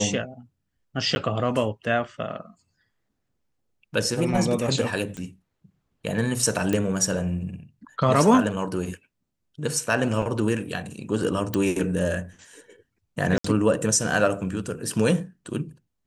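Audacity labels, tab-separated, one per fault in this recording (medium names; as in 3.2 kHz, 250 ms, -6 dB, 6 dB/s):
1.150000	1.160000	dropout 10 ms
5.170000	5.170000	pop -23 dBFS
6.730000	6.730000	pop -12 dBFS
10.220000	10.220000	dropout 2.8 ms
11.540000	11.540000	pop
13.380000	13.440000	dropout 64 ms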